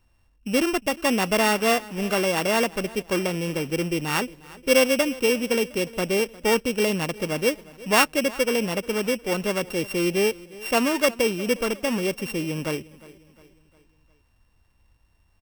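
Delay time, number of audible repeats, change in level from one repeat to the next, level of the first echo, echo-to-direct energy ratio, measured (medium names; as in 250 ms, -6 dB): 356 ms, 3, -6.5 dB, -20.5 dB, -19.5 dB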